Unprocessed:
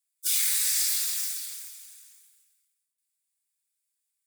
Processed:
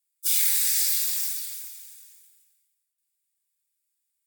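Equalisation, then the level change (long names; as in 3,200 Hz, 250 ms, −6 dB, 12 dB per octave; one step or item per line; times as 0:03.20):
high-pass filter 1,300 Hz 24 dB per octave
parametric band 16,000 Hz +9.5 dB 0.25 octaves
0.0 dB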